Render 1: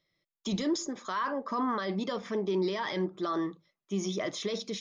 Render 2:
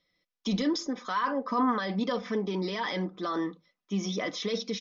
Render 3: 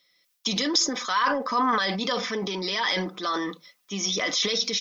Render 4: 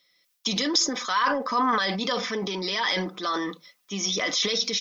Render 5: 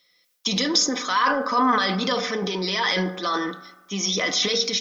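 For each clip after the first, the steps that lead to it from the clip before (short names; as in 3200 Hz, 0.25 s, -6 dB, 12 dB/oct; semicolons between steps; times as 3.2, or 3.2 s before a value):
Chebyshev low-pass 5800 Hz, order 4; comb 4 ms, depth 56%; gain +2 dB
tilt +3.5 dB/oct; transient shaper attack 0 dB, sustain +8 dB; gain +4.5 dB
nothing audible
reverb RT60 1.2 s, pre-delay 3 ms, DRR 9 dB; gain +2.5 dB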